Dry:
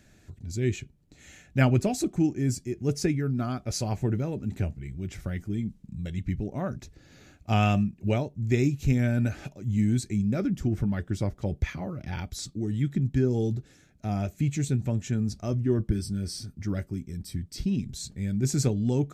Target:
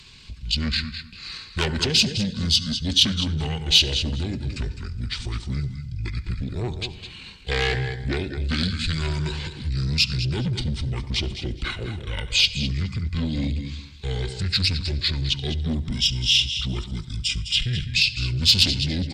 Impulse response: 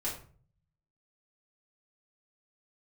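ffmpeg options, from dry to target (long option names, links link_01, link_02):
-filter_complex "[0:a]acrossover=split=420|4100[link_01][link_02][link_03];[link_01]alimiter=limit=-22dB:level=0:latency=1:release=402[link_04];[link_04][link_02][link_03]amix=inputs=3:normalize=0,asetrate=27781,aresample=44100,atempo=1.5874,equalizer=frequency=10000:width_type=o:width=0.73:gain=-4.5,aecho=1:1:207|414:0.299|0.0537,asplit=2[link_05][link_06];[1:a]atrim=start_sample=2205,adelay=68[link_07];[link_06][link_07]afir=irnorm=-1:irlink=0,volume=-20.5dB[link_08];[link_05][link_08]amix=inputs=2:normalize=0,asoftclip=type=tanh:threshold=-25.5dB,highshelf=frequency=1800:width_type=q:width=1.5:gain=13,volume=6dB"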